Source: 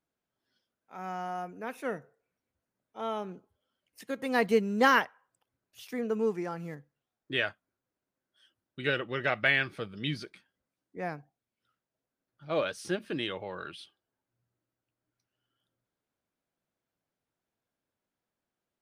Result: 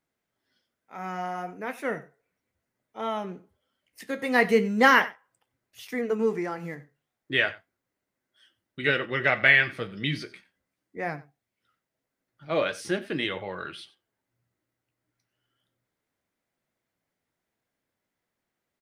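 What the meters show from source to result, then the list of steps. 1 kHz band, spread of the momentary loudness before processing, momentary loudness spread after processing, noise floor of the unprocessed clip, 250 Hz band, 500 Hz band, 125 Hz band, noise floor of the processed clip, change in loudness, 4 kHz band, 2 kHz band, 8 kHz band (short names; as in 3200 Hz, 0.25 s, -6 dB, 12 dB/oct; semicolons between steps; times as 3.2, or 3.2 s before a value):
+4.0 dB, 18 LU, 19 LU, under -85 dBFS, +4.0 dB, +4.0 dB, +4.0 dB, -85 dBFS, +5.5 dB, +4.5 dB, +7.0 dB, +4.0 dB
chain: bell 2000 Hz +7.5 dB 0.3 oct; echo 92 ms -19 dB; flange 0.36 Hz, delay 7.7 ms, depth 9.8 ms, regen -62%; gain +8 dB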